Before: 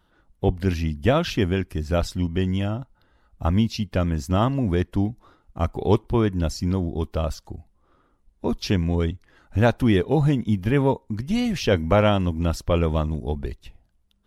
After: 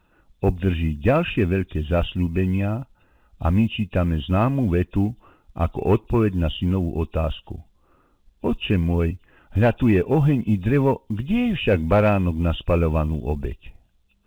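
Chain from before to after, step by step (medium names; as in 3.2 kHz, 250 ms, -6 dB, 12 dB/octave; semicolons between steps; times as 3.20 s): knee-point frequency compression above 2.4 kHz 4:1; treble shelf 2.6 kHz -5.5 dB; companded quantiser 8-bit; saturation -10 dBFS, distortion -20 dB; trim +2.5 dB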